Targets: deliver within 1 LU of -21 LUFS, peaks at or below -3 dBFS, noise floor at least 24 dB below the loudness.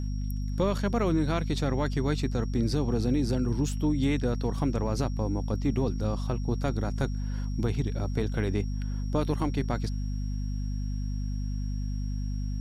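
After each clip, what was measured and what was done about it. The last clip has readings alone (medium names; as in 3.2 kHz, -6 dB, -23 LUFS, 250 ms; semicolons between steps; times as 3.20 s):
hum 50 Hz; highest harmonic 250 Hz; hum level -28 dBFS; steady tone 5.6 kHz; tone level -53 dBFS; loudness -30.0 LUFS; peak level -14.5 dBFS; loudness target -21.0 LUFS
-> hum notches 50/100/150/200/250 Hz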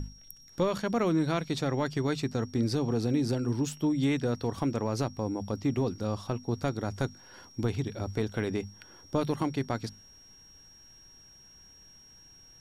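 hum not found; steady tone 5.6 kHz; tone level -53 dBFS
-> band-stop 5.6 kHz, Q 30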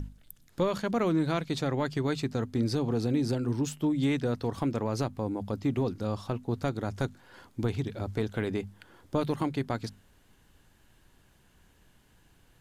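steady tone not found; loudness -31.0 LUFS; peak level -15.0 dBFS; loudness target -21.0 LUFS
-> trim +10 dB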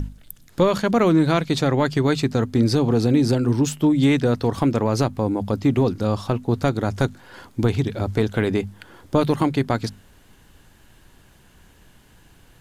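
loudness -21.0 LUFS; peak level -5.0 dBFS; noise floor -53 dBFS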